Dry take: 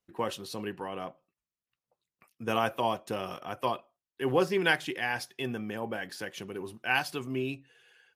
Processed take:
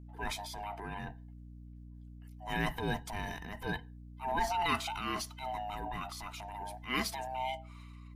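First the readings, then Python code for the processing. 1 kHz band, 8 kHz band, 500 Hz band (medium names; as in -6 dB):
-1.5 dB, +1.0 dB, -10.5 dB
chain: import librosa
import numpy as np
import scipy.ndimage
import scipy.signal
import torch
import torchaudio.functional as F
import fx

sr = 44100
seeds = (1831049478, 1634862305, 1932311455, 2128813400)

y = fx.band_swap(x, sr, width_hz=500)
y = fx.transient(y, sr, attack_db=-9, sustain_db=6)
y = fx.add_hum(y, sr, base_hz=60, snr_db=11)
y = y * librosa.db_to_amplitude(-3.5)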